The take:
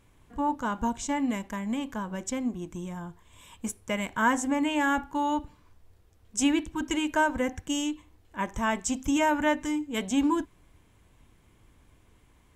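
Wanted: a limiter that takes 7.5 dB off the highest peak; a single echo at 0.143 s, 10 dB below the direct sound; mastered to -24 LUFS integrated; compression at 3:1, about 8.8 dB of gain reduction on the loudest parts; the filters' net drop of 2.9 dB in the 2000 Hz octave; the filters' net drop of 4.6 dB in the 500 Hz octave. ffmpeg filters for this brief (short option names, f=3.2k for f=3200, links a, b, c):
-af "equalizer=f=500:t=o:g=-6,equalizer=f=2k:t=o:g=-3.5,acompressor=threshold=-34dB:ratio=3,alimiter=level_in=5dB:limit=-24dB:level=0:latency=1,volume=-5dB,aecho=1:1:143:0.316,volume=14.5dB"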